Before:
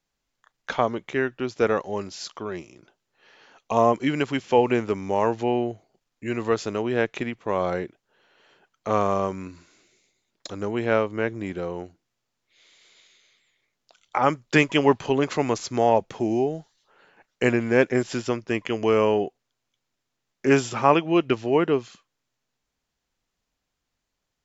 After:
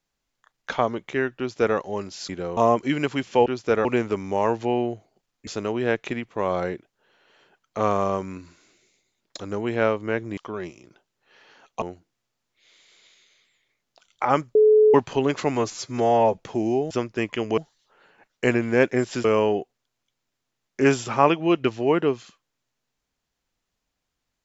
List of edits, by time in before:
1.38–1.77 s: copy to 4.63 s
2.29–3.74 s: swap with 11.47–11.75 s
6.25–6.57 s: delete
14.48–14.87 s: bleep 429 Hz -11.5 dBFS
15.48–16.03 s: stretch 1.5×
18.23–18.90 s: move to 16.56 s

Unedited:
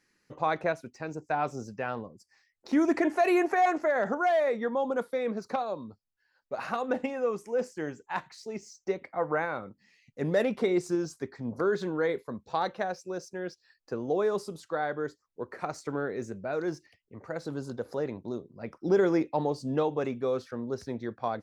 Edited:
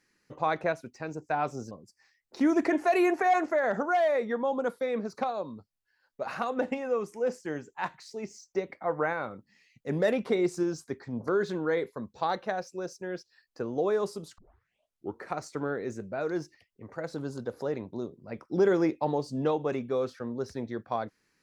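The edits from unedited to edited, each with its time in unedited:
1.71–2.03 s: delete
14.70 s: tape start 0.85 s

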